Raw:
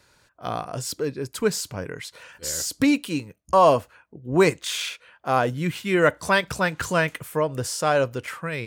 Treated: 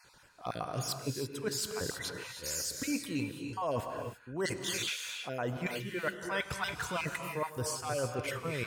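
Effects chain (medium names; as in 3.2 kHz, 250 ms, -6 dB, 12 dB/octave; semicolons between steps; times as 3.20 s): random holes in the spectrogram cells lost 27%; reverse; compression 6:1, threshold -33 dBFS, peak gain reduction 19.5 dB; reverse; gated-style reverb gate 350 ms rising, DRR 4.5 dB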